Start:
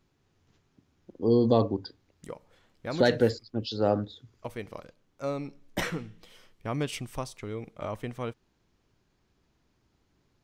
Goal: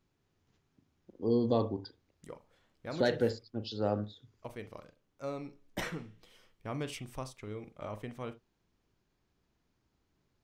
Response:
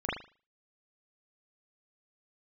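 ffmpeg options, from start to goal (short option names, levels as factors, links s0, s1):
-filter_complex "[0:a]asplit=2[s0][s1];[1:a]atrim=start_sample=2205,atrim=end_sample=3528[s2];[s1][s2]afir=irnorm=-1:irlink=0,volume=0.141[s3];[s0][s3]amix=inputs=2:normalize=0,volume=0.422"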